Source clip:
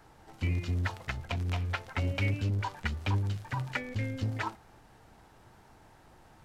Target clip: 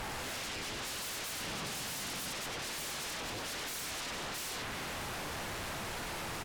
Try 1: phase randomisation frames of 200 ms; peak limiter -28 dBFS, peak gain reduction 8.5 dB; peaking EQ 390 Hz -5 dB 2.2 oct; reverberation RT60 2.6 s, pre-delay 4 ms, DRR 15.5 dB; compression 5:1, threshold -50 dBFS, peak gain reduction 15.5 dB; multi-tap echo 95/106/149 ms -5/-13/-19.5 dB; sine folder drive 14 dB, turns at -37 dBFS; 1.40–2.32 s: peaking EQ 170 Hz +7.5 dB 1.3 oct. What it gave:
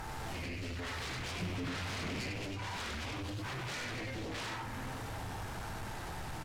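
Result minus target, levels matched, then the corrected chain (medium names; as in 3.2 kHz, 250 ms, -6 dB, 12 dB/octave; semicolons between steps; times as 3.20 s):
sine folder: distortion -22 dB
phase randomisation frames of 200 ms; peak limiter -28 dBFS, peak gain reduction 8.5 dB; peaking EQ 390 Hz -5 dB 2.2 oct; reverberation RT60 2.6 s, pre-delay 4 ms, DRR 15.5 dB; compression 5:1, threshold -50 dBFS, peak gain reduction 15.5 dB; multi-tap echo 95/106/149 ms -5/-13/-19.5 dB; sine folder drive 23 dB, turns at -37 dBFS; 1.40–2.32 s: peaking EQ 170 Hz +7.5 dB 1.3 oct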